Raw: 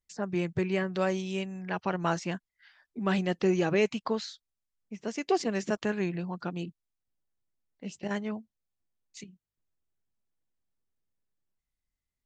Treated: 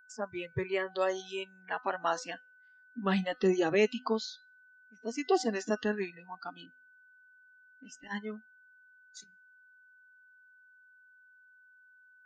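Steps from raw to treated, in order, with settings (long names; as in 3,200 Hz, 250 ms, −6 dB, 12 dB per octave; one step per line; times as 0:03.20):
steady tone 1,500 Hz −36 dBFS
hum removal 252.4 Hz, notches 39
noise reduction from a noise print of the clip's start 22 dB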